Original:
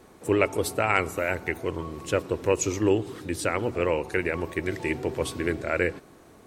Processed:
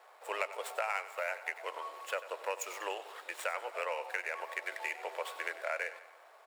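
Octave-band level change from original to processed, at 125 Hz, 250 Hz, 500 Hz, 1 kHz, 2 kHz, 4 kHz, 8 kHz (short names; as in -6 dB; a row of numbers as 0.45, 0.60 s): under -40 dB, -32.5 dB, -14.0 dB, -6.5 dB, -7.0 dB, -7.5 dB, -12.0 dB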